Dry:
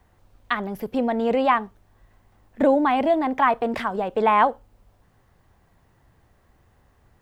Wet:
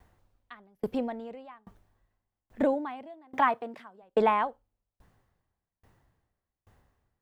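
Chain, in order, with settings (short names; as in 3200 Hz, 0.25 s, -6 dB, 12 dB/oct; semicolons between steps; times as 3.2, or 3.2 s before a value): 2.73–4.01 HPF 62 Hz -> 170 Hz 24 dB/oct; dB-ramp tremolo decaying 1.2 Hz, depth 37 dB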